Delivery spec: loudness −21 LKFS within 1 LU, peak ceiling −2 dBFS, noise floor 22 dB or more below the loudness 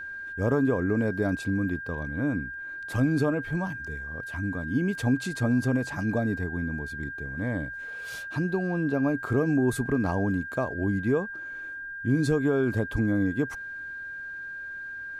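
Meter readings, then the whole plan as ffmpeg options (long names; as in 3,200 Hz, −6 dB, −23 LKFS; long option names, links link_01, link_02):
interfering tone 1,600 Hz; level of the tone −35 dBFS; integrated loudness −28.5 LKFS; sample peak −13.5 dBFS; target loudness −21.0 LKFS
→ -af "bandreject=frequency=1600:width=30"
-af "volume=7.5dB"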